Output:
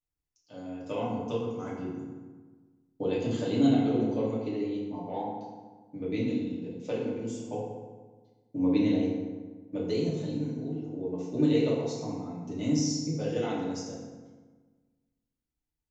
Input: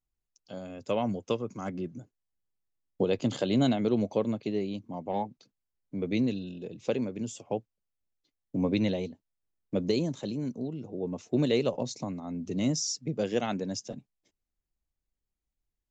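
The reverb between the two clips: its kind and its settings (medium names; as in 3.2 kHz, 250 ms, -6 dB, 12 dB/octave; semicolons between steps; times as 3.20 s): FDN reverb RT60 1.4 s, low-frequency decay 1.2×, high-frequency decay 0.6×, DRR -6.5 dB; trim -9.5 dB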